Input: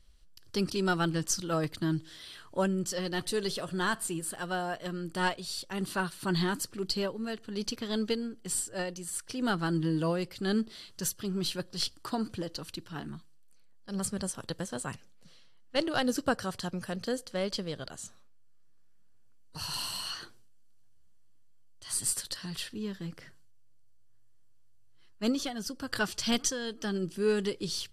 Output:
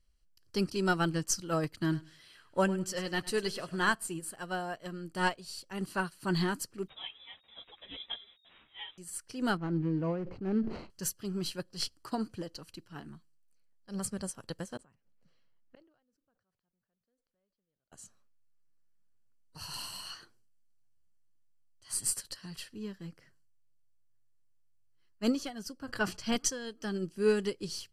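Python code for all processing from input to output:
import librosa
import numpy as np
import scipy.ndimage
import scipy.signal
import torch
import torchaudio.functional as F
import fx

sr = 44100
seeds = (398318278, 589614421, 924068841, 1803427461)

y = fx.chain(x, sr, fx.peak_eq(hz=2100.0, db=4.0, octaves=1.7),
    fx.echo_feedback(ms=102, feedback_pct=28, wet_db=-14.0), at=(1.74, 3.92))
y = fx.chain(y, sr, fx.delta_mod(bps=64000, step_db=-42.0),
    fx.freq_invert(carrier_hz=3700),
    fx.ensemble(), at=(6.88, 8.98))
y = fx.chain(y, sr, fx.median_filter(points=25),
    fx.spacing_loss(db_at_10k=28),
    fx.sustainer(db_per_s=56.0), at=(9.57, 10.9))
y = fx.chain(y, sr, fx.lowpass(hz=1800.0, slope=6),
    fx.gate_flip(shuts_db=-34.0, range_db=-40),
    fx.sustainer(db_per_s=83.0), at=(14.77, 17.92))
y = fx.chain(y, sr, fx.high_shelf(hz=4100.0, db=-9.0),
    fx.hum_notches(base_hz=60, count=4),
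    fx.sustainer(db_per_s=120.0), at=(25.79, 26.36))
y = fx.notch(y, sr, hz=3600.0, q=5.2)
y = fx.upward_expand(y, sr, threshold_db=-49.0, expansion=1.5)
y = y * 10.0 ** (1.5 / 20.0)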